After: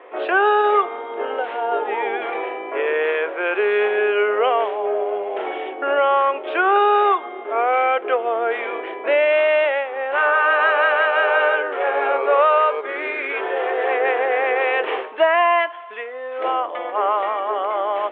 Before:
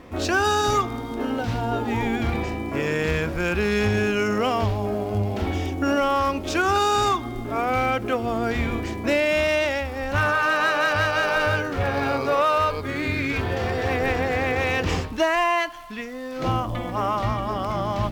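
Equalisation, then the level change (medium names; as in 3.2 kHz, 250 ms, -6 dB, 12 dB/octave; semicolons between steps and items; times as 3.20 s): Chebyshev band-pass 400–3300 Hz, order 4; distance through air 360 m; +7.5 dB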